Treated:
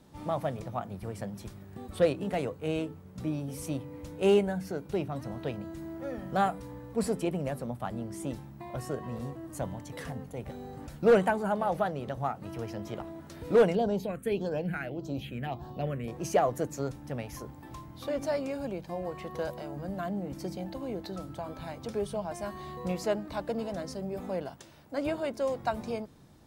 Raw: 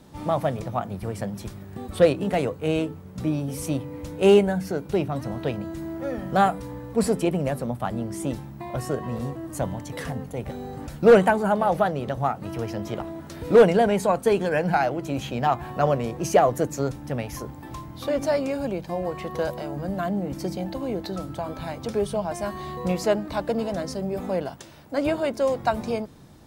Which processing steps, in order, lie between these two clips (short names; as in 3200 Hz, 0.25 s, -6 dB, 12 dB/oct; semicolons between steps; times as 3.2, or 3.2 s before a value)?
13.75–16.08 phaser stages 4, 1.7 Hz, lowest notch 790–2200 Hz; gain -7.5 dB